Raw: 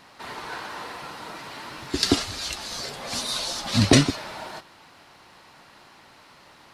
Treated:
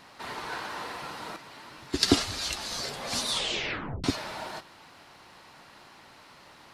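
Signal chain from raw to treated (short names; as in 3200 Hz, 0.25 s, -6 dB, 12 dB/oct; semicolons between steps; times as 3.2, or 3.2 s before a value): 1.36–2.08 upward expander 1.5:1, over -35 dBFS; 3.28 tape stop 0.76 s; gain -1 dB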